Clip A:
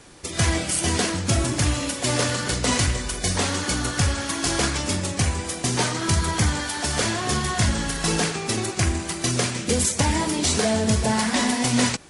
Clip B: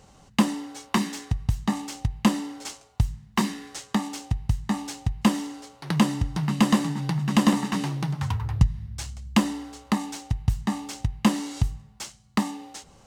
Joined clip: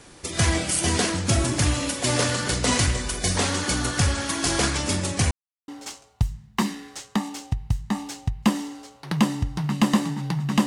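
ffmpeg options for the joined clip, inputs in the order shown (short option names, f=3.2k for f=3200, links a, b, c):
-filter_complex "[0:a]apad=whole_dur=10.66,atrim=end=10.66,asplit=2[a][b];[a]atrim=end=5.31,asetpts=PTS-STARTPTS,afade=t=out:st=5.306:d=0.004:c=hsin[c];[b]atrim=start=5.31:end=5.68,asetpts=PTS-STARTPTS,volume=0[d];[1:a]atrim=start=2.47:end=7.45,asetpts=PTS-STARTPTS,afade=t=in:d=0.004:c=hsin[e];[c][d][e]concat=n=3:v=0:a=1"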